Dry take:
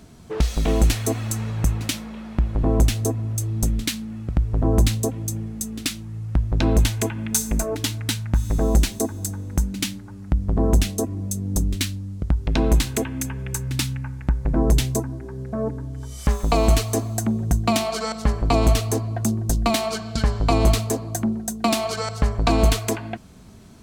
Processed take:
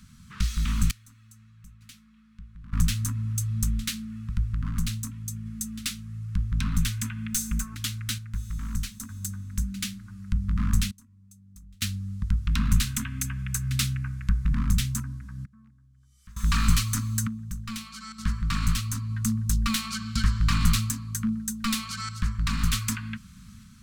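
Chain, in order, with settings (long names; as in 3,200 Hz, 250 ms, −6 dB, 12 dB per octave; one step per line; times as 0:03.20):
wavefolder on the positive side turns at −17 dBFS
sample-and-hold tremolo 1.1 Hz, depth 95%
elliptic band-stop filter 220–1,200 Hz, stop band 40 dB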